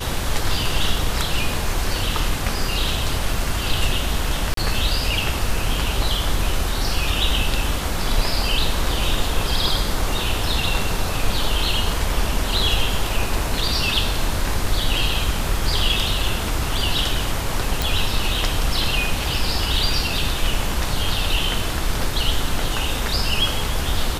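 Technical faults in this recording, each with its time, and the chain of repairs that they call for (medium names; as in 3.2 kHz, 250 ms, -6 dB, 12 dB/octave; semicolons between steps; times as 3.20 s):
4.54–4.57 s: dropout 33 ms
17.82 s: pop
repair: de-click; interpolate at 4.54 s, 33 ms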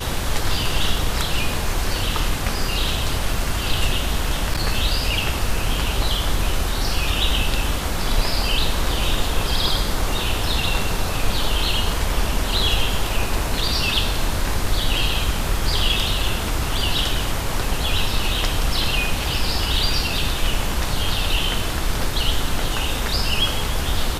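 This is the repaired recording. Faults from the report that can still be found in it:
nothing left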